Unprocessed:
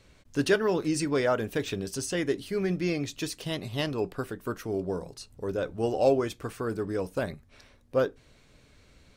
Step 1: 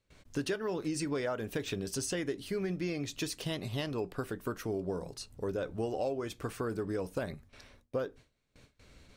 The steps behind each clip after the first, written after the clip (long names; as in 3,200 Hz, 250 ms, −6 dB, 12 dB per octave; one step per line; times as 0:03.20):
noise gate with hold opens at −47 dBFS
downward compressor 6 to 1, threshold −31 dBFS, peak gain reduction 13.5 dB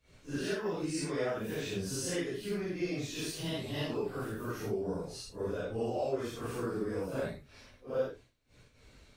random phases in long frames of 200 ms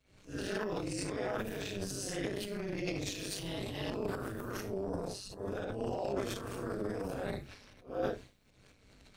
amplitude modulation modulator 200 Hz, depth 75%
transient designer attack −2 dB, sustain +12 dB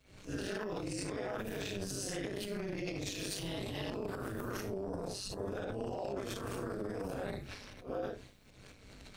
downward compressor, threshold −42 dBFS, peak gain reduction 13.5 dB
level +6.5 dB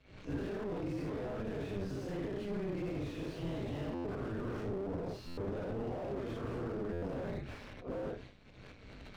low-pass filter 3,500 Hz 12 dB per octave
buffer that repeats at 0:03.94/0:05.27/0:06.92, samples 512, times 8
slew-rate limiting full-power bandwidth 5.2 Hz
level +3 dB